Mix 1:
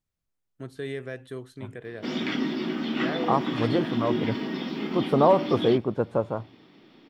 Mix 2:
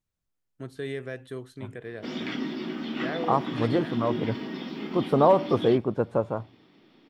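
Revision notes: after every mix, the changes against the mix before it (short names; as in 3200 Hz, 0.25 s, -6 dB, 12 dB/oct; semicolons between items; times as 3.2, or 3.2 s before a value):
background -4.0 dB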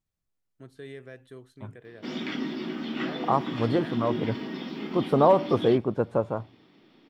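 first voice -8.5 dB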